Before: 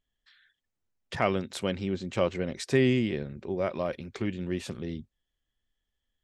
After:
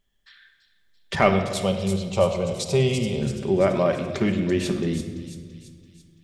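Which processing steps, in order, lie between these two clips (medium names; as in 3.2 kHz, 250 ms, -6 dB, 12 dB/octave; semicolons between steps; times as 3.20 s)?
1.29–3.22 s: static phaser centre 720 Hz, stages 4; in parallel at -9 dB: hard clipper -21 dBFS, distortion -14 dB; on the sum: feedback echo behind a high-pass 336 ms, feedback 53%, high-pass 5.3 kHz, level -3.5 dB; simulated room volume 2500 m³, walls mixed, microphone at 1.2 m; trim +5.5 dB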